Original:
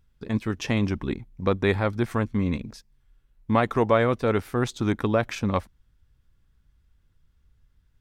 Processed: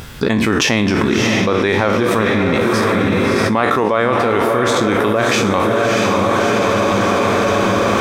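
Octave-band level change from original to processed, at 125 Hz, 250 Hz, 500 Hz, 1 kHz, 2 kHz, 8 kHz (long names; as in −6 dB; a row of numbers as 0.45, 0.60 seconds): +7.0, +11.5, +12.5, +14.5, +16.0, +20.0 decibels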